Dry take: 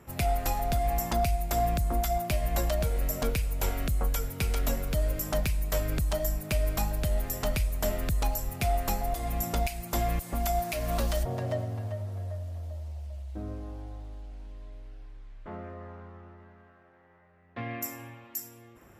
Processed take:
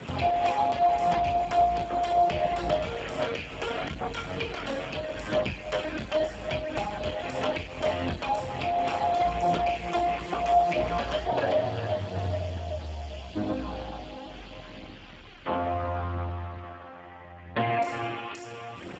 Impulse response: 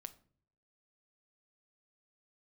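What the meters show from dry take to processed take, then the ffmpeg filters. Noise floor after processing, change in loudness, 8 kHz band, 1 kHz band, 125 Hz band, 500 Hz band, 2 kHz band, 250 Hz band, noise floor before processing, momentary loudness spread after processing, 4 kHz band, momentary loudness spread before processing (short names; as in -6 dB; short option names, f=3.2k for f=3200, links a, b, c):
-45 dBFS, +2.5 dB, under -10 dB, +8.0 dB, -4.0 dB, +7.0 dB, +5.0 dB, +2.5 dB, -57 dBFS, 16 LU, +4.0 dB, 16 LU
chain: -filter_complex "[0:a]asplit=2[a][b];[b]adelay=37,volume=-7dB[c];[a][c]amix=inputs=2:normalize=0,asplit=2[d][e];[e]acompressor=threshold=-38dB:ratio=6,volume=-0.5dB[f];[d][f]amix=inputs=2:normalize=0,alimiter=limit=-22.5dB:level=0:latency=1:release=73,equalizer=f=2.9k:t=o:w=1.1:g=14.5,bandreject=f=50:t=h:w=6,bandreject=f=100:t=h:w=6,bandreject=f=150:t=h:w=6,bandreject=f=200:t=h:w=6,bandreject=f=250:t=h:w=6,bandreject=f=300:t=h:w=6,bandreject=f=350:t=h:w=6,asplit=2[g][h];[h]aecho=0:1:23|54:0.631|0.251[i];[g][i]amix=inputs=2:normalize=0,acrossover=split=300|810|2600[j][k][l][m];[j]acompressor=threshold=-39dB:ratio=4[n];[k]acompressor=threshold=-31dB:ratio=4[o];[l]acompressor=threshold=-35dB:ratio=4[p];[m]acompressor=threshold=-48dB:ratio=4[q];[n][o][p][q]amix=inputs=4:normalize=0,highshelf=f=4k:g=-7.5,aphaser=in_gain=1:out_gain=1:delay=3.9:decay=0.37:speed=0.74:type=triangular,volume=6.5dB" -ar 16000 -c:a libspeex -b:a 8k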